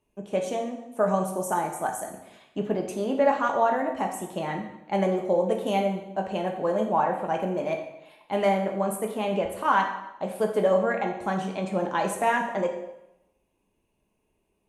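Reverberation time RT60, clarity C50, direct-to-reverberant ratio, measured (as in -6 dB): 0.85 s, 6.5 dB, 2.0 dB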